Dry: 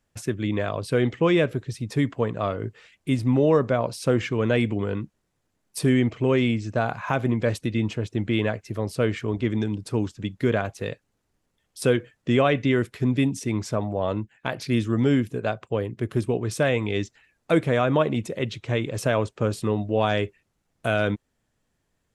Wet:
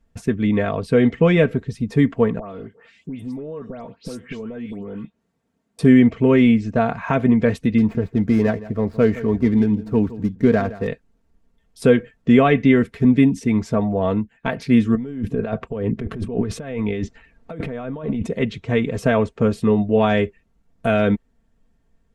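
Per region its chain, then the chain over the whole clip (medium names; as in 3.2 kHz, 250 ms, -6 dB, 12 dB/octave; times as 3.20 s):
2.39–5.79 s: high-pass 130 Hz + compression 12:1, threshold -34 dBFS + phase dispersion highs, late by 129 ms, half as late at 2.3 kHz
7.78–10.88 s: median filter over 15 samples + delay 167 ms -16.5 dB
14.95–18.27 s: treble shelf 5 kHz -9 dB + compressor with a negative ratio -32 dBFS
whole clip: tilt EQ -2.5 dB/octave; comb 4.4 ms, depth 59%; dynamic bell 2 kHz, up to +5 dB, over -43 dBFS, Q 1.6; trim +1.5 dB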